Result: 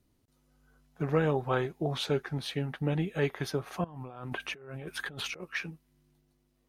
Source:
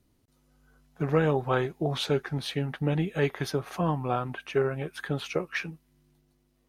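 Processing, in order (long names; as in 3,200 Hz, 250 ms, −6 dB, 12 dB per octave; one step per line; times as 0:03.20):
0:03.84–0:05.44: compressor whose output falls as the input rises −39 dBFS, ratio −1
level −3 dB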